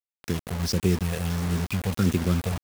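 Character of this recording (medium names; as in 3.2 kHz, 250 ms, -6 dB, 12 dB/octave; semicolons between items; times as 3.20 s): phasing stages 6, 1.5 Hz, lowest notch 320–1300 Hz; a quantiser's noise floor 6-bit, dither none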